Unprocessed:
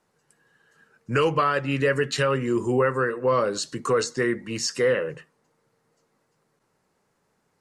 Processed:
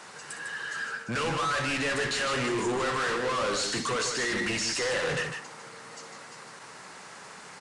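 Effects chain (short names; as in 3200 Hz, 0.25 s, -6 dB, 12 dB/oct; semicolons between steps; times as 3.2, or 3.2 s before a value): bell 440 Hz -6 dB 1.9 oct; reverse; compressor, threshold -35 dBFS, peak gain reduction 14.5 dB; reverse; overdrive pedal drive 36 dB, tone 7400 Hz, clips at -23.5 dBFS; on a send: tapped delay 61/151 ms -11.5/-6.5 dB; on the sum: downsampling 22050 Hz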